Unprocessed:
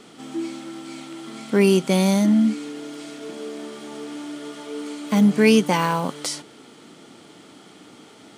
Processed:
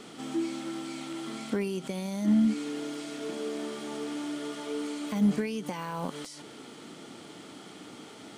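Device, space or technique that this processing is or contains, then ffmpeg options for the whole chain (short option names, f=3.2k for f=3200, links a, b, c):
de-esser from a sidechain: -filter_complex "[0:a]asplit=2[a][b];[b]highpass=f=5.3k:p=1,apad=whole_len=369382[c];[a][c]sidechaincompress=threshold=-43dB:ratio=8:attack=0.88:release=87"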